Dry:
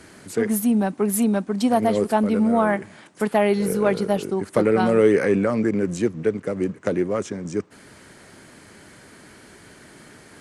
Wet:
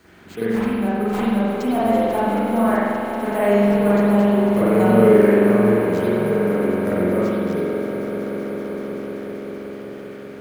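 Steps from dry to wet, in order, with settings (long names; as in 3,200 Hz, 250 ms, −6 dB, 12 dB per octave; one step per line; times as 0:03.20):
sample-rate reduction 11,000 Hz, jitter 0%
echo that builds up and dies away 191 ms, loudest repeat 5, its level −13.5 dB
spring reverb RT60 1.9 s, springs 44 ms, chirp 65 ms, DRR −9.5 dB
level that may rise only so fast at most 420 dB per second
level −8.5 dB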